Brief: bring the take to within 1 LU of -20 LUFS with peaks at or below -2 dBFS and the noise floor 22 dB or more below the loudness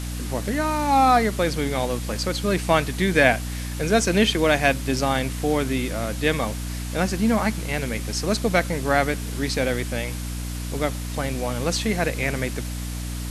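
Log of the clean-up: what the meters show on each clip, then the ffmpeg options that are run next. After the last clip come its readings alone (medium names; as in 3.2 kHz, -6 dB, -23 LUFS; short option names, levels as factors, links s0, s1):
hum 60 Hz; highest harmonic 300 Hz; hum level -27 dBFS; noise floor -30 dBFS; noise floor target -45 dBFS; loudness -23.0 LUFS; peak level -1.5 dBFS; loudness target -20.0 LUFS
-> -af "bandreject=f=60:t=h:w=4,bandreject=f=120:t=h:w=4,bandreject=f=180:t=h:w=4,bandreject=f=240:t=h:w=4,bandreject=f=300:t=h:w=4"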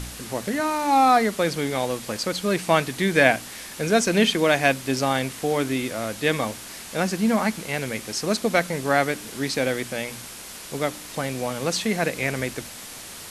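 hum not found; noise floor -39 dBFS; noise floor target -46 dBFS
-> -af "afftdn=nr=7:nf=-39"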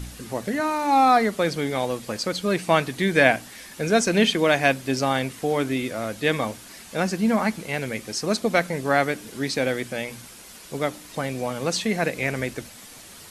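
noise floor -44 dBFS; noise floor target -46 dBFS
-> -af "afftdn=nr=6:nf=-44"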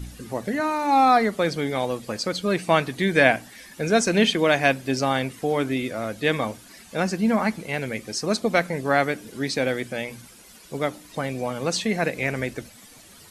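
noise floor -48 dBFS; loudness -23.5 LUFS; peak level -1.5 dBFS; loudness target -20.0 LUFS
-> -af "volume=1.5,alimiter=limit=0.794:level=0:latency=1"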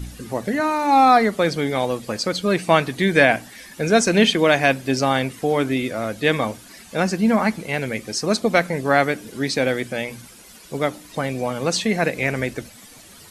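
loudness -20.0 LUFS; peak level -2.0 dBFS; noise floor -45 dBFS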